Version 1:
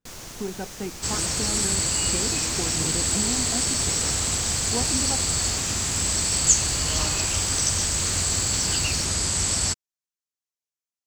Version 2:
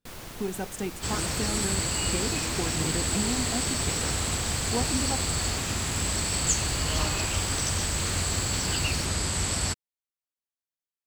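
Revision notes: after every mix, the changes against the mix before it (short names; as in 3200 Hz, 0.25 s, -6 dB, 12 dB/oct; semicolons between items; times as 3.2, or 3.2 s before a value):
speech: remove LPF 2100 Hz; master: add bell 6300 Hz -9.5 dB 0.91 oct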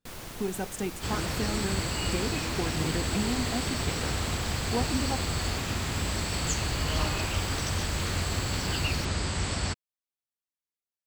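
second sound: add air absorption 92 m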